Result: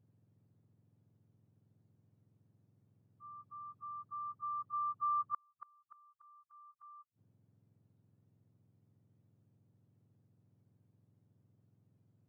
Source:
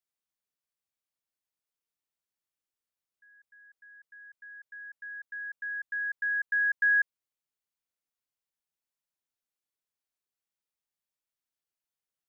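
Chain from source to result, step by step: spectrum inverted on a logarithmic axis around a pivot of 1.4 kHz; inverted gate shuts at -35 dBFS, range -40 dB; trim +8 dB

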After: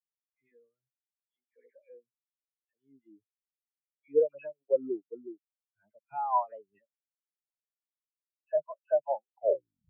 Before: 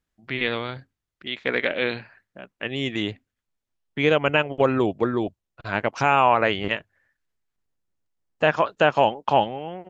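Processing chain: tape stop on the ending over 0.67 s; phase dispersion lows, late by 108 ms, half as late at 2.1 kHz; spectral contrast expander 4:1; trim -8.5 dB

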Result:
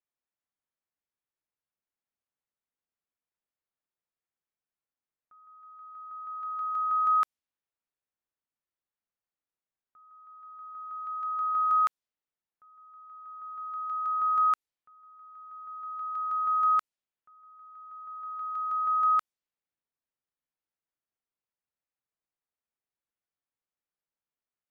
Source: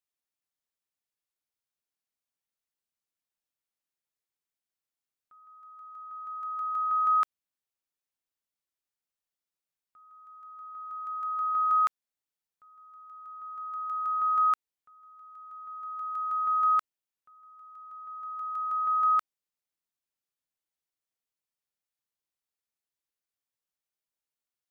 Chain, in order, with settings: level-controlled noise filter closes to 2 kHz, open at -25.5 dBFS

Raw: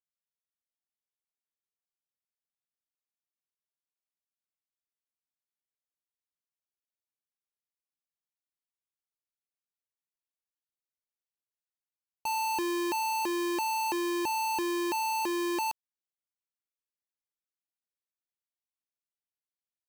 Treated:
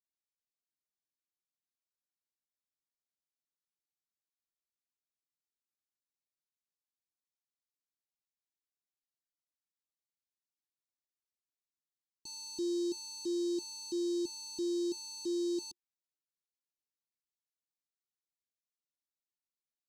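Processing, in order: FFT filter 110 Hz 0 dB, 350 Hz +7 dB, 550 Hz -21 dB, 2.3 kHz -29 dB, 3.8 kHz +6 dB, 7.5 kHz +5 dB, 14 kHz -18 dB; trim -9 dB

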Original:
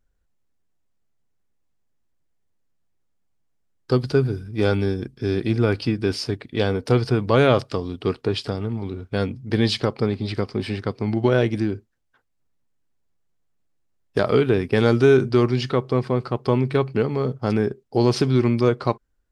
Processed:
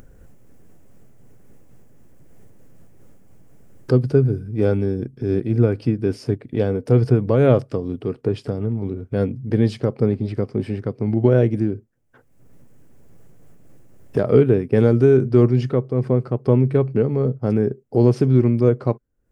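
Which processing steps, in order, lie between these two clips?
ten-band graphic EQ 125 Hz +9 dB, 250 Hz +5 dB, 500 Hz +7 dB, 1 kHz -3 dB, 4 kHz -11 dB; upward compressor, threshold -16 dBFS; random flutter of the level, depth 55%; trim -2.5 dB

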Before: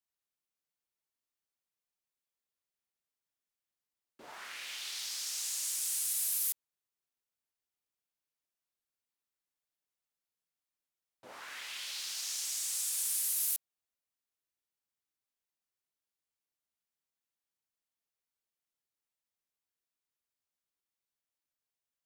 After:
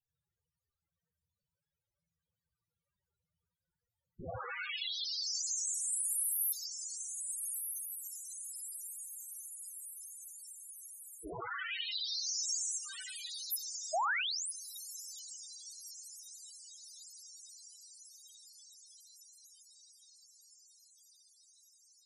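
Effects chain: 12.77–13.52 s: RIAA curve playback; echo that smears into a reverb 1349 ms, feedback 65%, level -5.5 dB; 13.93–14.52 s: painted sound rise 790–11000 Hz -43 dBFS; vibrato 13 Hz 12 cents; in parallel at -4 dB: overload inside the chain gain 29.5 dB; on the sum: frequency shift -200 Hz; on a send at -3.5 dB: treble shelf 8.3 kHz +8.5 dB + reverberation RT60 0.70 s, pre-delay 64 ms; on the sum: loudest bins only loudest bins 8; trim +7.5 dB

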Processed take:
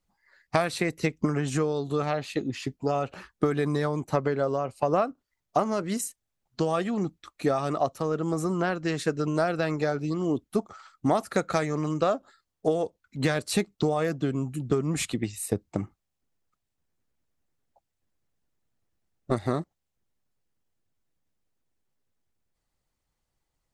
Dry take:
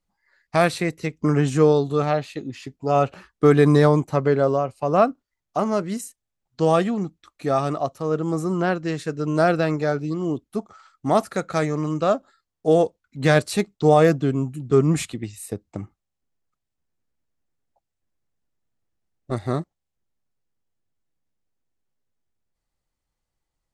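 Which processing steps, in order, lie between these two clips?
compression 6:1, threshold -23 dBFS, peak gain reduction 12.5 dB; harmonic-percussive split harmonic -5 dB; trim +4 dB

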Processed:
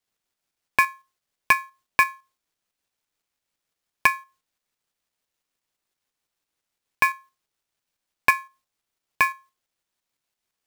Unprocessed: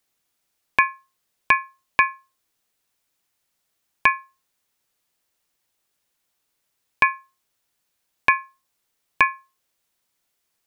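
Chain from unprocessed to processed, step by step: dead-time distortion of 0.055 ms; tremolo saw up 5.9 Hz, depth 45%

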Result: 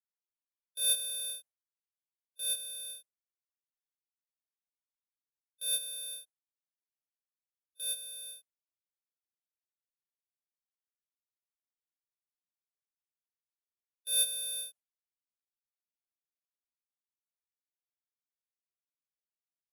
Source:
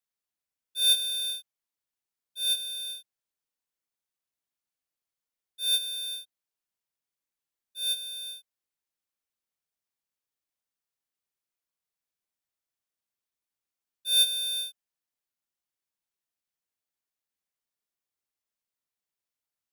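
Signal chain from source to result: gate with hold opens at -36 dBFS; fifteen-band graphic EQ 630 Hz +9 dB, 4 kHz -6 dB, 10 kHz +9 dB; trim -6.5 dB

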